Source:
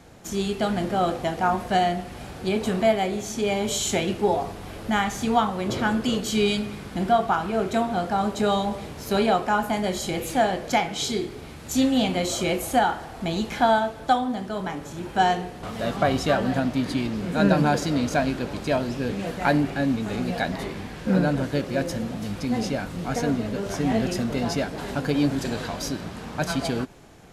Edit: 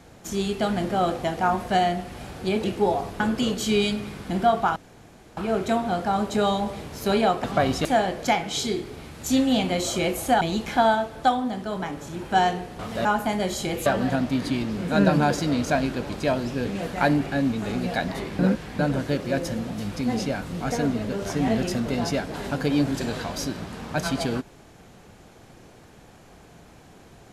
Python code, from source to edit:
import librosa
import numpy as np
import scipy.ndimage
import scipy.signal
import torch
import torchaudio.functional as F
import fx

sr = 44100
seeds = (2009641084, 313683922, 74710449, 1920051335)

y = fx.edit(x, sr, fx.cut(start_s=2.64, length_s=1.42),
    fx.cut(start_s=4.62, length_s=1.24),
    fx.insert_room_tone(at_s=7.42, length_s=0.61),
    fx.swap(start_s=9.49, length_s=0.81, other_s=15.89, other_length_s=0.41),
    fx.cut(start_s=12.86, length_s=0.39),
    fx.reverse_span(start_s=20.83, length_s=0.4), tone=tone)